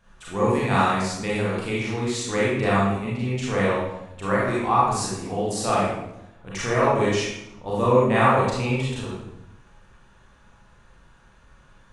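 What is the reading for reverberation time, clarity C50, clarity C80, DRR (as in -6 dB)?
0.85 s, -2.0 dB, 2.0 dB, -7.5 dB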